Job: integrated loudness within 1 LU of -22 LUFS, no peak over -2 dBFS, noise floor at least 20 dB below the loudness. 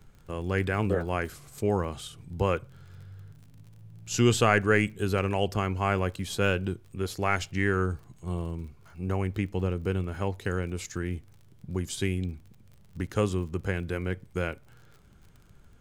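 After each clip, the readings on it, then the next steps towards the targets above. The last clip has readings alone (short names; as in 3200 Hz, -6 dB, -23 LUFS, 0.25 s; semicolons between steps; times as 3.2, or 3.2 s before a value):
ticks 39/s; loudness -29.5 LUFS; peak -7.5 dBFS; loudness target -22.0 LUFS
-> de-click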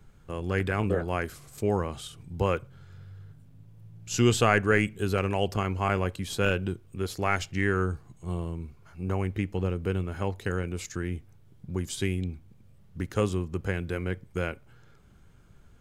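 ticks 0.13/s; loudness -29.5 LUFS; peak -7.5 dBFS; loudness target -22.0 LUFS
-> gain +7.5 dB; limiter -2 dBFS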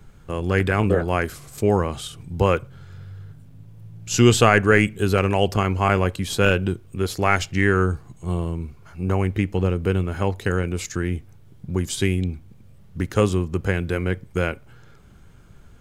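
loudness -22.0 LUFS; peak -2.0 dBFS; noise floor -48 dBFS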